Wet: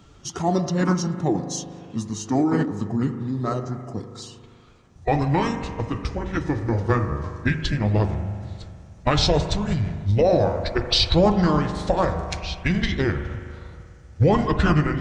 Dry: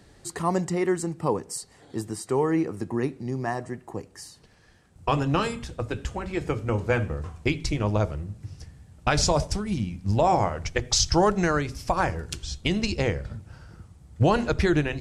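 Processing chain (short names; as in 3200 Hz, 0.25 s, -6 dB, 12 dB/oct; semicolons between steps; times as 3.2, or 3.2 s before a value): bin magnitudes rounded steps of 15 dB; spring tank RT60 2.2 s, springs 39 ms, chirp 65 ms, DRR 7.5 dB; formant shift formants -5 st; gain +3.5 dB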